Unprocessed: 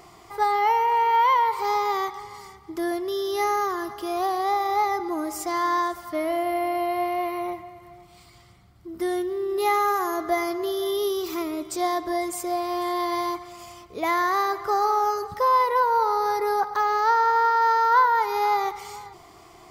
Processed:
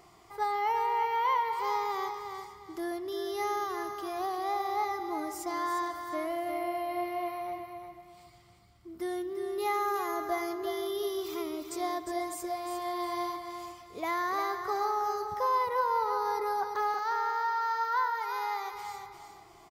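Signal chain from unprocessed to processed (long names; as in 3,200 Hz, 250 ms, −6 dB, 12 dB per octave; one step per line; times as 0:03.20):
0:16.94–0:18.73: high-pass filter 1,000 Hz 6 dB per octave
on a send: repeating echo 354 ms, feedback 27%, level −7.5 dB
on the sum: level −8.5 dB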